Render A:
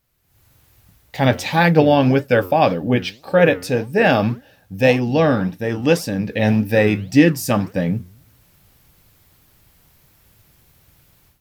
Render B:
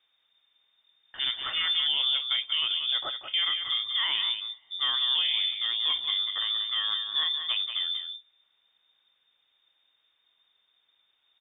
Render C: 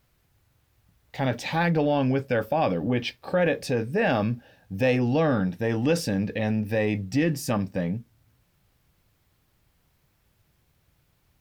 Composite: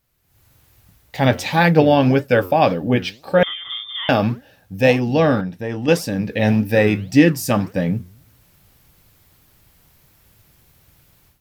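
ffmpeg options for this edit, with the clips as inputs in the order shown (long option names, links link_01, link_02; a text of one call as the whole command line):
ffmpeg -i take0.wav -i take1.wav -i take2.wav -filter_complex "[0:a]asplit=3[link_01][link_02][link_03];[link_01]atrim=end=3.432[link_04];[1:a]atrim=start=3.428:end=4.092[link_05];[link_02]atrim=start=4.088:end=5.412[link_06];[2:a]atrim=start=5.408:end=5.882[link_07];[link_03]atrim=start=5.878[link_08];[link_04][link_05]acrossfade=duration=0.004:curve1=hsin:curve2=hsin[link_09];[link_09][link_06]acrossfade=duration=0.004:curve1=hsin:curve2=hsin[link_10];[link_10][link_07]acrossfade=duration=0.004:curve1=hsin:curve2=hsin[link_11];[link_11][link_08]acrossfade=duration=0.004:curve1=hsin:curve2=hsin" out.wav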